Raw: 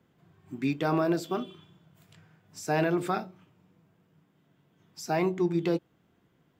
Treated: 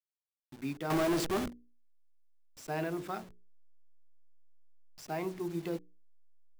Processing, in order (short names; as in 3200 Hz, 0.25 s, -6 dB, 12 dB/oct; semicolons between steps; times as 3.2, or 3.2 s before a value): level-crossing sampler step -38.5 dBFS; 0.9–1.48 power-law curve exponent 0.35; notches 60/120/180/240/300/360/420/480 Hz; gain -8.5 dB